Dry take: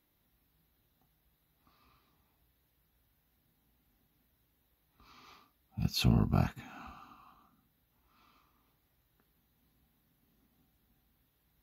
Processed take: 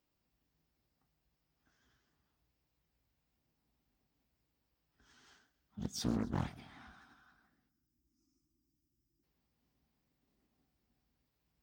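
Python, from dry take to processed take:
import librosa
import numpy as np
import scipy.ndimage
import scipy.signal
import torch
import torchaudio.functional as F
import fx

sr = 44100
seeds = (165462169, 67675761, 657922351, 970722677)

p1 = fx.spec_box(x, sr, start_s=7.69, length_s=1.55, low_hz=350.0, high_hz=3600.0, gain_db=-28)
p2 = fx.formant_shift(p1, sr, semitones=5)
p3 = fx.vibrato(p2, sr, rate_hz=11.0, depth_cents=56.0)
p4 = p3 + fx.echo_feedback(p3, sr, ms=131, feedback_pct=52, wet_db=-20, dry=0)
p5 = fx.doppler_dist(p4, sr, depth_ms=0.86)
y = p5 * 10.0 ** (-7.5 / 20.0)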